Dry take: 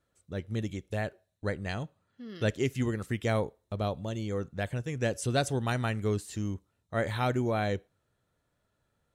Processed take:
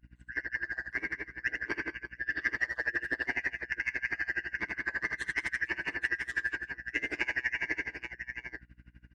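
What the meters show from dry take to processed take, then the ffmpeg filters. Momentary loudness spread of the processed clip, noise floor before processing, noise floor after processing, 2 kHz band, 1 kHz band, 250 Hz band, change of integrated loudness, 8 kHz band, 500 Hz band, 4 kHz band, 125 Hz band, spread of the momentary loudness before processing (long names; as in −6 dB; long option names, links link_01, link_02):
8 LU, −78 dBFS, −61 dBFS, +10.5 dB, −11.0 dB, −13.0 dB, −1.0 dB, −11.0 dB, −15.5 dB, −5.0 dB, −21.5 dB, 9 LU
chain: -filter_complex "[0:a]afftfilt=real='real(if(lt(b,272),68*(eq(floor(b/68),0)*1+eq(floor(b/68),1)*0+eq(floor(b/68),2)*3+eq(floor(b/68),3)*2)+mod(b,68),b),0)':imag='imag(if(lt(b,272),68*(eq(floor(b/68),0)*1+eq(floor(b/68),1)*0+eq(floor(b/68),2)*3+eq(floor(b/68),3)*2)+mod(b,68),b),0)':win_size=2048:overlap=0.75,acompressor=threshold=-37dB:ratio=5,acrossover=split=200 3800:gain=0.126 1 0.112[link_01][link_02][link_03];[link_01][link_02][link_03]amix=inputs=3:normalize=0,aecho=1:1:5.4:0.79,asoftclip=type=tanh:threshold=-28.5dB,aeval=exprs='val(0)*sin(2*PI*61*n/s)':channel_layout=same,equalizer=frequency=340:width=6.4:gain=12,bandreject=frequency=810:width=19,aecho=1:1:44|78|196|349|691|831:0.126|0.596|0.531|0.168|0.188|0.398,aeval=exprs='val(0)+0.000891*(sin(2*PI*60*n/s)+sin(2*PI*2*60*n/s)/2+sin(2*PI*3*60*n/s)/3+sin(2*PI*4*60*n/s)/4+sin(2*PI*5*60*n/s)/5)':channel_layout=same,acontrast=58,aeval=exprs='val(0)*pow(10,-24*(0.5-0.5*cos(2*PI*12*n/s))/20)':channel_layout=same,volume=6dB"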